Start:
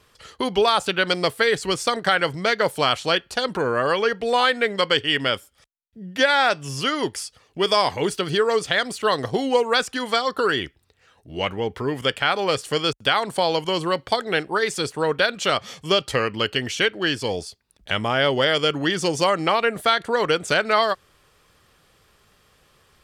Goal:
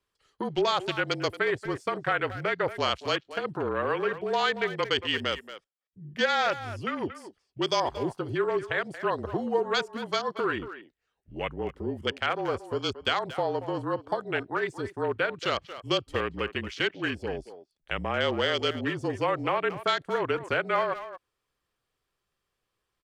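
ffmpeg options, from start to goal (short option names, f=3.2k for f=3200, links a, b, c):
-filter_complex "[0:a]afreqshift=-34,afwtdn=0.0447,asplit=2[a][b];[b]adelay=230,highpass=300,lowpass=3.4k,asoftclip=type=hard:threshold=-14dB,volume=-12dB[c];[a][c]amix=inputs=2:normalize=0,volume=-7dB"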